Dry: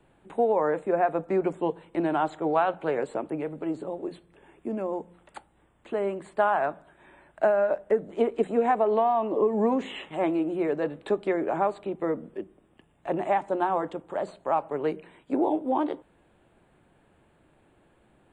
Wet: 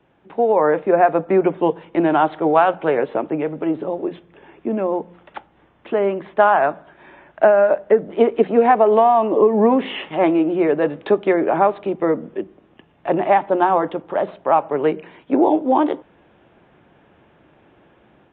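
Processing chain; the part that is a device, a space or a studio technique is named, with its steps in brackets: Bluetooth headset (high-pass 110 Hz 6 dB/octave; level rider gain up to 7 dB; resampled via 8 kHz; trim +3 dB; SBC 64 kbps 16 kHz)

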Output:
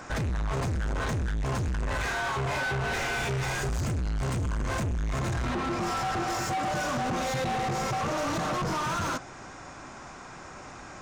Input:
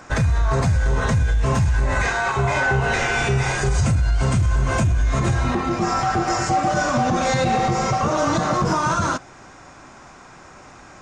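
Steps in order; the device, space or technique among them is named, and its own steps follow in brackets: saturation between pre-emphasis and de-emphasis (treble shelf 5.1 kHz +8.5 dB; saturation -27 dBFS, distortion -7 dB; treble shelf 5.1 kHz -8.5 dB)

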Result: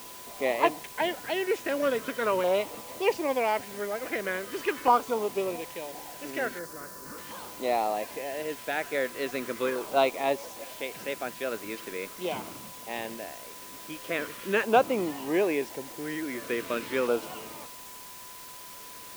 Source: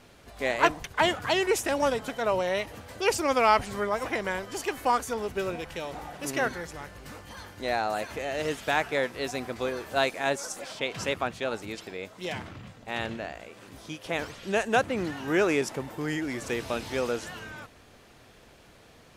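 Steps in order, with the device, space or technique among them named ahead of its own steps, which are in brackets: shortwave radio (band-pass 250–2700 Hz; tremolo 0.41 Hz, depth 56%; LFO notch saw down 0.41 Hz 690–1900 Hz; whistle 1 kHz -54 dBFS; white noise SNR 15 dB); 6.59–7.18 s: high-order bell 2.7 kHz -11 dB 1.2 oct; trim +4.5 dB

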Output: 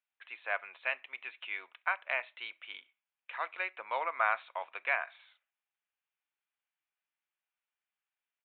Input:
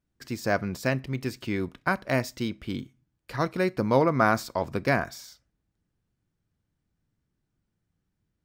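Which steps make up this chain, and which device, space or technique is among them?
musical greeting card (resampled via 8 kHz; high-pass 750 Hz 24 dB/octave; peaking EQ 2.5 kHz +9 dB 0.57 oct); trim -6 dB

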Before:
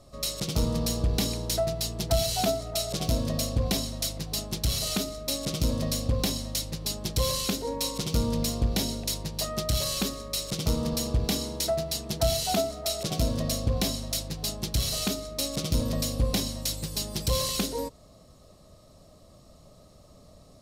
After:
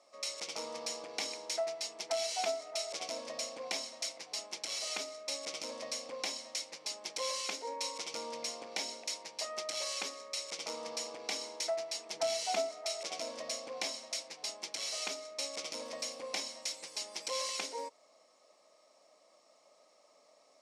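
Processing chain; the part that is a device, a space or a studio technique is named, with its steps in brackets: phone speaker on a table (cabinet simulation 380–8600 Hz, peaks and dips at 390 Hz -7 dB, 900 Hz +5 dB, 2.2 kHz +10 dB, 3.9 kHz -4 dB, 5.6 kHz +4 dB); 12.13–12.69 s: bass shelf 200 Hz +12 dB; trim -7.5 dB

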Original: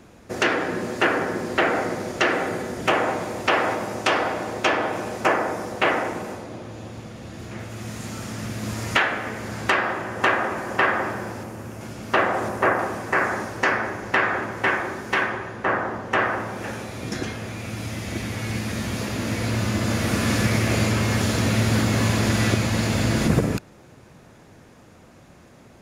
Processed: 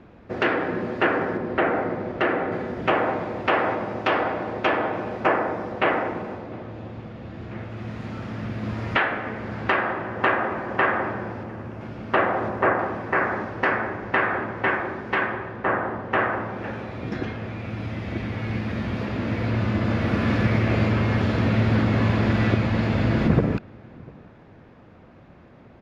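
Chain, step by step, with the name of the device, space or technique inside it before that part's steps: shout across a valley (distance through air 340 m; echo from a far wall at 120 m, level -25 dB); 1.37–2.52 s: low-pass 2.4 kHz 6 dB/octave; trim +1 dB

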